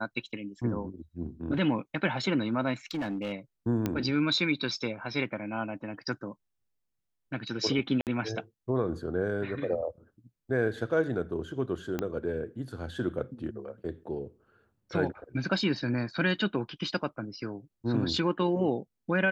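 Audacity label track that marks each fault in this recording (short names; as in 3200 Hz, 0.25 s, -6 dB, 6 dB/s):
2.910000	3.330000	clipped -28.5 dBFS
3.860000	3.860000	pop -15 dBFS
8.010000	8.070000	gap 58 ms
11.990000	11.990000	pop -17 dBFS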